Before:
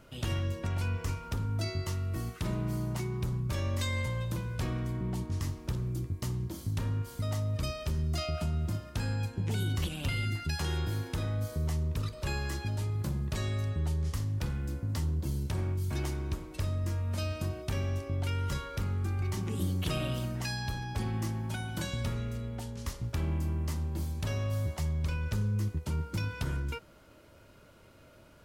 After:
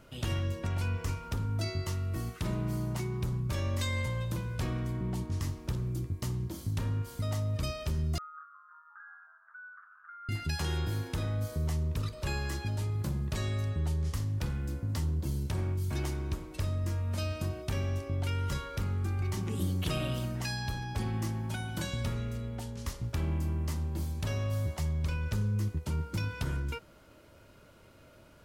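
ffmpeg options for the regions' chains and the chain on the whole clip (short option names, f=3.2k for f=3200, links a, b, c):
-filter_complex "[0:a]asettb=1/sr,asplit=3[a][b][c];[a]atrim=end=8.184[d];[b]atrim=start=8.18:end=10.29,asetpts=PTS-STARTPTS,afade=t=in:d=0.004:c=qsin,afade=t=out:st=2.106:d=0.004:c=qsin,asuperpass=centerf=1400:order=8:qfactor=3.1,asplit=7[e][f][g][h][i][j][k];[f]adelay=180,afreqshift=-98,volume=-14dB[l];[g]adelay=360,afreqshift=-196,volume=-18.6dB[m];[h]adelay=540,afreqshift=-294,volume=-23.2dB[n];[i]adelay=720,afreqshift=-392,volume=-27.7dB[o];[j]adelay=900,afreqshift=-490,volume=-32.3dB[p];[k]adelay=1080,afreqshift=-588,volume=-36.9dB[q];[e][l][m][n][o][p][q]amix=inputs=7:normalize=0,atrim=end_sample=93051[r];[c]atrim=start=10.286[s];[d][r]acrossfade=d=0.004:c1=hsin:c2=qsin[t];[t][s]acrossfade=d=0.004:c1=qsin:c2=hsin"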